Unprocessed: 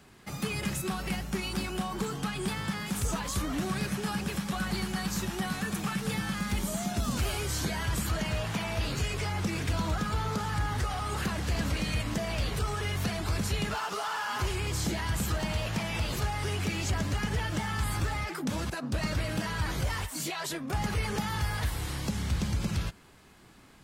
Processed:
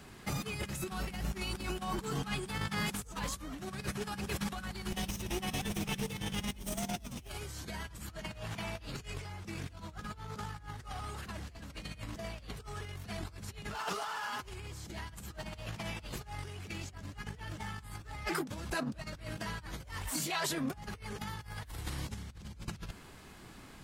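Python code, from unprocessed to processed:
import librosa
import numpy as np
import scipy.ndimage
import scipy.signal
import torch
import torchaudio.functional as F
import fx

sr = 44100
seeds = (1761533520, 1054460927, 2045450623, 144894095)

y = fx.lower_of_two(x, sr, delay_ms=0.35, at=(4.91, 7.29))
y = fx.low_shelf(y, sr, hz=67.0, db=3.5)
y = fx.over_compress(y, sr, threshold_db=-36.0, ratio=-0.5)
y = y * librosa.db_to_amplitude(-3.0)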